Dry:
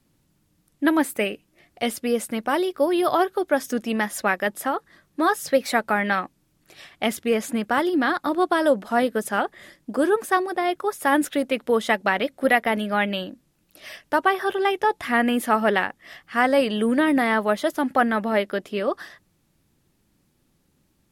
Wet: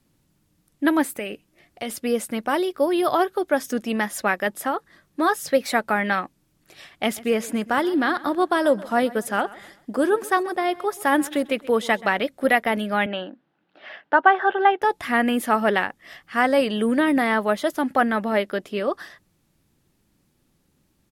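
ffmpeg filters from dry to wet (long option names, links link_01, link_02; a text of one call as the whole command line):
ffmpeg -i in.wav -filter_complex "[0:a]asplit=3[link_01][link_02][link_03];[link_01]afade=type=out:start_time=1.07:duration=0.02[link_04];[link_02]acompressor=threshold=-25dB:ratio=6:attack=3.2:release=140:knee=1:detection=peak,afade=type=in:start_time=1.07:duration=0.02,afade=type=out:start_time=1.89:duration=0.02[link_05];[link_03]afade=type=in:start_time=1.89:duration=0.02[link_06];[link_04][link_05][link_06]amix=inputs=3:normalize=0,asplit=3[link_07][link_08][link_09];[link_07]afade=type=out:start_time=7.15:duration=0.02[link_10];[link_08]aecho=1:1:130|260|390:0.1|0.037|0.0137,afade=type=in:start_time=7.15:duration=0.02,afade=type=out:start_time=12.15:duration=0.02[link_11];[link_09]afade=type=in:start_time=12.15:duration=0.02[link_12];[link_10][link_11][link_12]amix=inputs=3:normalize=0,asettb=1/sr,asplit=3[link_13][link_14][link_15];[link_13]atrim=end=13.064[link_16];[link_14]atrim=start=13.06:end=14.82,asetpts=PTS-STARTPTS,afade=type=in:duration=0.004:curve=qsin,afade=type=out:start_time=1.756:duration=0.004:curve=qsin,highpass=230,equalizer=frequency=800:width_type=q:width=4:gain=8,equalizer=frequency=1500:width_type=q:width=4:gain=7,equalizer=frequency=2400:width_type=q:width=4:gain=-4,lowpass=frequency=3200:width=0.5412,lowpass=frequency=3200:width=1.3066[link_17];[link_15]atrim=start=14.816[link_18];[link_16][link_17]acrossfade=duration=0.004:curve1=hsin:curve2=qsin[link_19];[link_19][link_18]acrossfade=duration=0.004:curve1=qsin:curve2=hsin" out.wav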